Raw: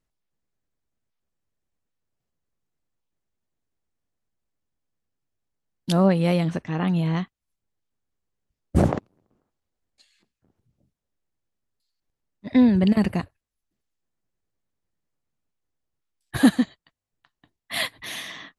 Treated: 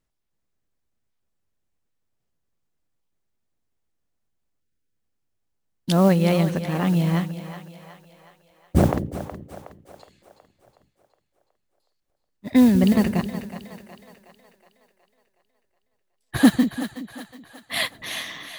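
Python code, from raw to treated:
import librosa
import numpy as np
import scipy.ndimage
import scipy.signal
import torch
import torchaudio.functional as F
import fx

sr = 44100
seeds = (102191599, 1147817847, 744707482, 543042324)

y = fx.spec_erase(x, sr, start_s=4.61, length_s=0.35, low_hz=550.0, high_hz=1300.0)
y = fx.mod_noise(y, sr, seeds[0], snr_db=25)
y = fx.echo_split(y, sr, split_hz=450.0, low_ms=189, high_ms=368, feedback_pct=52, wet_db=-11)
y = y * 10.0 ** (1.5 / 20.0)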